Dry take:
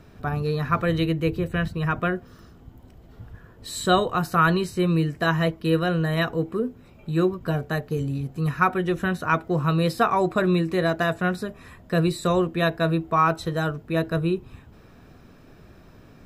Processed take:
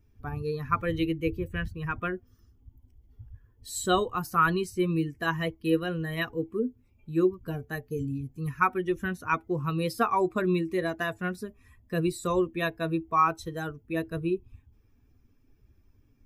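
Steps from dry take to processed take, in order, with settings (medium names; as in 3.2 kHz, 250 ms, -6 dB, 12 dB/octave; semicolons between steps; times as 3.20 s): expander on every frequency bin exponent 1.5; fifteen-band graphic EQ 160 Hz -9 dB, 630 Hz -9 dB, 1.6 kHz -4 dB, 4 kHz -7 dB; trim +2 dB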